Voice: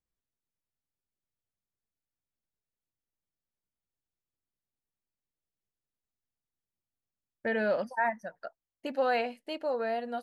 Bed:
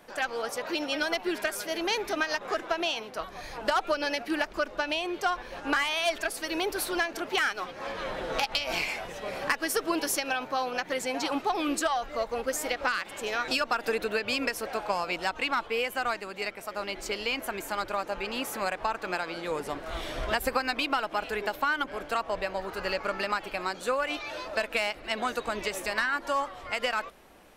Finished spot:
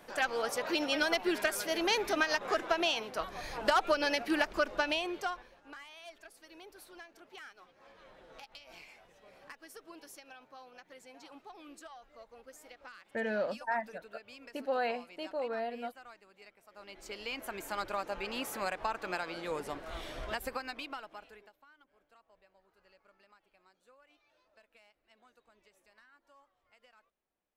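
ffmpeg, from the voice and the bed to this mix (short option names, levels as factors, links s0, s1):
-filter_complex "[0:a]adelay=5700,volume=0.596[s0];[1:a]volume=7.08,afade=t=out:st=4.82:d=0.74:silence=0.0794328,afade=t=in:st=16.68:d=1.12:silence=0.125893,afade=t=out:st=19.54:d=2:silence=0.0316228[s1];[s0][s1]amix=inputs=2:normalize=0"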